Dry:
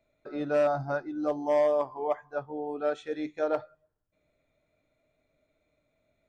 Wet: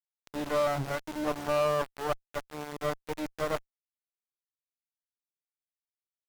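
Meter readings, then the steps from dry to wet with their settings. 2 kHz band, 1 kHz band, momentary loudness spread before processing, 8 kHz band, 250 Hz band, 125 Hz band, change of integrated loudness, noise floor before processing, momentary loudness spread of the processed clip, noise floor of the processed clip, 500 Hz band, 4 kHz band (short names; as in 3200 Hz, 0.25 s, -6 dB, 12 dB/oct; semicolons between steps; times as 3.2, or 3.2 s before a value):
+2.0 dB, 0.0 dB, 11 LU, n/a, -2.5 dB, +3.5 dB, -2.5 dB, -77 dBFS, 11 LU, under -85 dBFS, -4.0 dB, +9.0 dB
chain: tone controls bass +8 dB, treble +4 dB; sample gate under -31 dBFS; added harmonics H 4 -10 dB, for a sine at -15.5 dBFS; gain -4 dB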